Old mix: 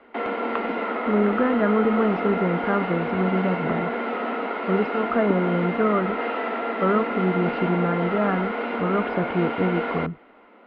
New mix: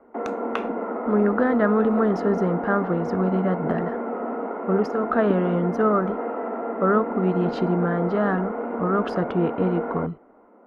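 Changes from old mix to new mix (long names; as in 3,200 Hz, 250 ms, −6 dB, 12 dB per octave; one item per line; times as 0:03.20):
background: add Bessel low-pass filter 790 Hz, order 4
master: remove high-frequency loss of the air 410 metres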